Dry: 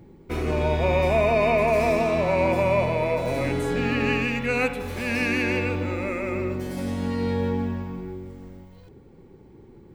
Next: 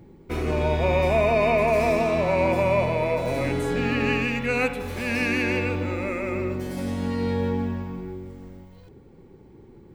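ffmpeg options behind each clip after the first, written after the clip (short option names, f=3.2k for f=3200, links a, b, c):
-af anull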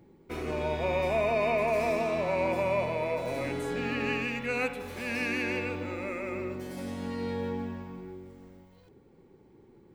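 -af "lowshelf=f=130:g=-9.5,volume=-6dB"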